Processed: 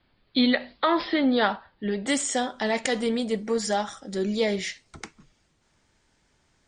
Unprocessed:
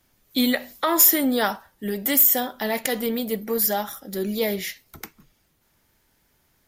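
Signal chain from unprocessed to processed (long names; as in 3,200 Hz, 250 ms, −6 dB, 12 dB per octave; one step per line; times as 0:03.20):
Butterworth low-pass 4,700 Hz 96 dB per octave, from 0:02.06 8,900 Hz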